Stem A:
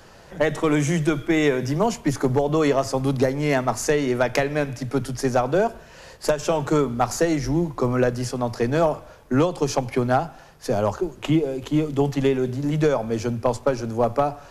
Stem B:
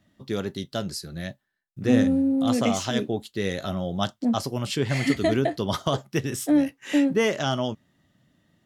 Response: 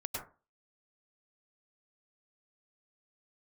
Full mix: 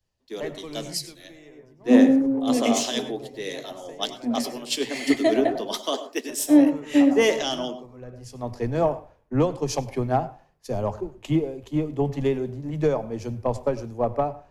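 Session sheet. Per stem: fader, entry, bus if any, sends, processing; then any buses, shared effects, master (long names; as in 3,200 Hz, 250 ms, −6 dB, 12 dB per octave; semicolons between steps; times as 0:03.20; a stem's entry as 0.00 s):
−4.5 dB, 0.00 s, send −15 dB, automatic ducking −22 dB, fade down 1.50 s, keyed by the second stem
−2.0 dB, 0.00 s, send −6.5 dB, Butterworth high-pass 230 Hz 72 dB per octave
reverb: on, RT60 0.35 s, pre-delay 92 ms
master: parametric band 1,400 Hz −8.5 dB 0.38 octaves; multiband upward and downward expander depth 100%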